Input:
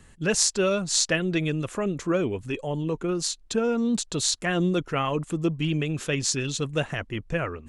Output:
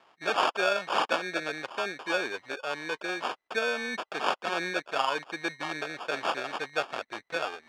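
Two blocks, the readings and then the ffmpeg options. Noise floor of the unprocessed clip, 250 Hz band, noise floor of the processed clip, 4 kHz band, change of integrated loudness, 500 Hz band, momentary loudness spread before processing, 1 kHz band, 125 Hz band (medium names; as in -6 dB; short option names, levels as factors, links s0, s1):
-52 dBFS, -14.5 dB, -79 dBFS, -4.5 dB, -5.0 dB, -5.0 dB, 7 LU, +4.5 dB, -24.0 dB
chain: -af "acrusher=samples=22:mix=1:aa=0.000001,highpass=740,lowpass=3700,volume=1.33"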